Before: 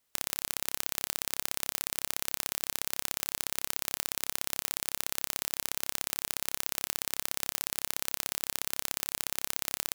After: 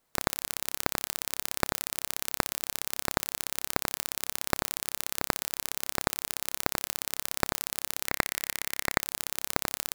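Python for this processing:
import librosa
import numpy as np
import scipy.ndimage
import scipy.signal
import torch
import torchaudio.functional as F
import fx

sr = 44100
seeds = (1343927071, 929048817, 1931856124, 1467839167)

p1 = fx.sample_hold(x, sr, seeds[0], rate_hz=3300.0, jitter_pct=0)
p2 = x + (p1 * 10.0 ** (-3.0 / 20.0))
y = fx.peak_eq(p2, sr, hz=2000.0, db=9.5, octaves=0.5, at=(8.07, 9.01))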